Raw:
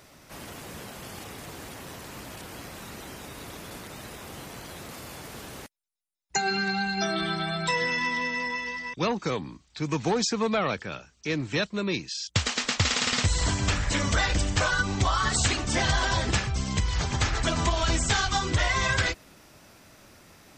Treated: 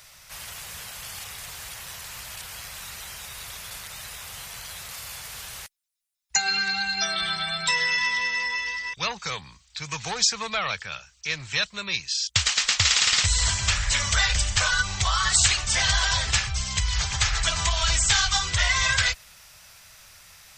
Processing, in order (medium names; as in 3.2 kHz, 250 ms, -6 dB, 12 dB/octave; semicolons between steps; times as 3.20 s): amplifier tone stack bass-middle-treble 10-0-10; trim +8.5 dB